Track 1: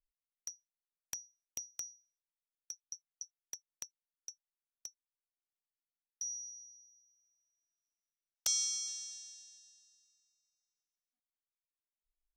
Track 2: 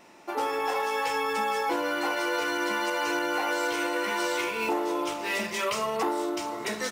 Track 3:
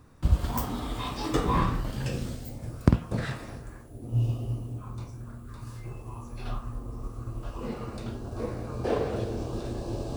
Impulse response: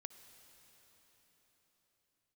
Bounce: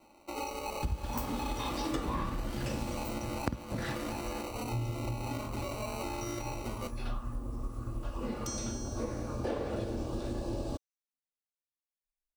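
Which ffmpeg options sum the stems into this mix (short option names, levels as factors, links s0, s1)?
-filter_complex "[0:a]volume=0.355[s0];[1:a]acrusher=samples=26:mix=1:aa=0.000001,alimiter=limit=0.075:level=0:latency=1:release=206,volume=0.398[s1];[2:a]adelay=600,volume=0.944[s2];[s0][s1][s2]amix=inputs=3:normalize=0,aecho=1:1:3.5:0.36,acompressor=threshold=0.0282:ratio=5"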